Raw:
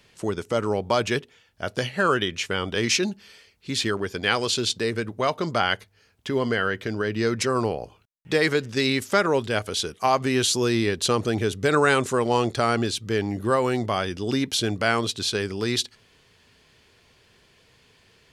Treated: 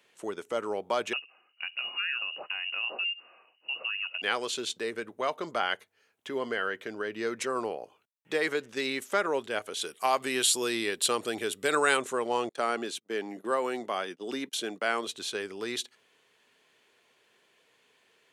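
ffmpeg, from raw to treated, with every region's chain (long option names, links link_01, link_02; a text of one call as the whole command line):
ffmpeg -i in.wav -filter_complex "[0:a]asettb=1/sr,asplit=3[link_01][link_02][link_03];[link_01]atrim=end=1.134[link_04];[link_02]atrim=start=1.13:end=4.22,asetpts=PTS-STARTPTS,afade=type=in:duration=0.004:curve=qsin,afade=type=out:start_time=3.086:duration=0.004:curve=qsin,equalizer=frequency=200:width=0.59:gain=12,acompressor=threshold=-26dB:ratio=2.5:attack=3.2:release=140:knee=1:detection=peak,lowpass=frequency=2600:width_type=q:width=0.5098,lowpass=frequency=2600:width_type=q:width=0.6013,lowpass=frequency=2600:width_type=q:width=0.9,lowpass=frequency=2600:width_type=q:width=2.563,afreqshift=-3000[link_05];[link_03]atrim=start=4.216[link_06];[link_04][link_05]acrossfade=duration=0.004:curve1=hsin:curve2=qsin[link_07];[link_07][link_06]acrossfade=duration=0.004:curve1=qsin:curve2=hsin,asettb=1/sr,asplit=3[link_08][link_09][link_10];[link_08]atrim=end=9.814[link_11];[link_09]atrim=start=9.81:end=11.97,asetpts=PTS-STARTPTS,afade=type=in:duration=0.004:curve=qsin,afade=type=out:start_time=2.156:duration=0.004:curve=qsin,highshelf=frequency=3000:gain=10.5,bandreject=frequency=6200:width=5.4[link_12];[link_10]atrim=start=11.966[link_13];[link_11][link_12]acrossfade=duration=0.004:curve1=hsin:curve2=qsin[link_14];[link_14][link_13]acrossfade=duration=0.004:curve1=qsin:curve2=hsin,asettb=1/sr,asplit=3[link_15][link_16][link_17];[link_15]atrim=end=12.494[link_18];[link_16]atrim=start=12.49:end=15.07,asetpts=PTS-STARTPTS,afade=type=in:duration=0.004:curve=qsin,afade=type=out:start_time=2.576:duration=0.004:curve=qsin,agate=range=-27dB:threshold=-34dB:ratio=16:release=100:detection=peak,highpass=frequency=150:width=0.5412,highpass=frequency=150:width=1.3066[link_19];[link_17]atrim=start=15.066[link_20];[link_18][link_19]acrossfade=duration=0.004:curve1=hsin:curve2=qsin[link_21];[link_21][link_20]acrossfade=duration=0.004:curve1=qsin:curve2=hsin,highpass=340,equalizer=frequency=4900:width=2.7:gain=-8,volume=-6dB" out.wav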